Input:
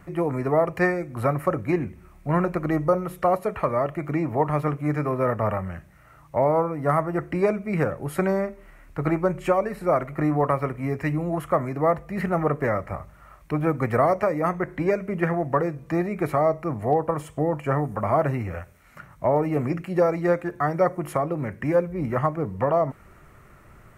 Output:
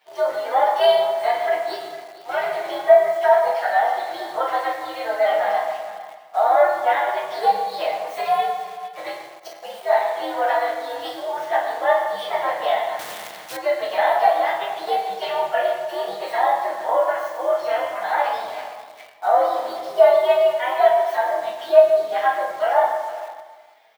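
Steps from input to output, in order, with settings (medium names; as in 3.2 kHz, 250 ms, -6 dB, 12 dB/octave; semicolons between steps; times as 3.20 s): frequency axis rescaled in octaves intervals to 127%; 9.11–9.63 s: inverted gate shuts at -22 dBFS, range -32 dB; tilt EQ +2.5 dB/octave; reverberation RT60 1.4 s, pre-delay 7 ms, DRR -2.5 dB; in parallel at -3 dB: word length cut 6-bit, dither none; on the sum: resonant high-pass 660 Hz, resonance Q 4.6; on a send: delay 456 ms -16 dB; 12.99–13.57 s: on the sum: spectrum-flattening compressor 2:1; trim -8 dB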